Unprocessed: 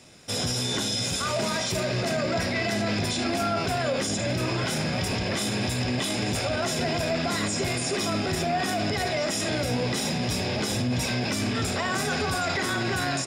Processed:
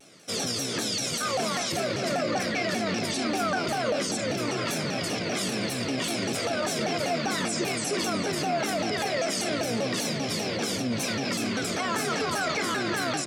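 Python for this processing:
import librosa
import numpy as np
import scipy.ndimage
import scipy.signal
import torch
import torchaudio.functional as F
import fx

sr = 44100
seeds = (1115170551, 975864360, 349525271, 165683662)

p1 = scipy.signal.sosfilt(scipy.signal.butter(2, 170.0, 'highpass', fs=sr, output='sos'), x)
p2 = fx.notch_comb(p1, sr, f0_hz=890.0)
p3 = p2 + fx.echo_single(p2, sr, ms=372, db=-14.5, dry=0)
y = fx.vibrato_shape(p3, sr, shape='saw_down', rate_hz=5.1, depth_cents=250.0)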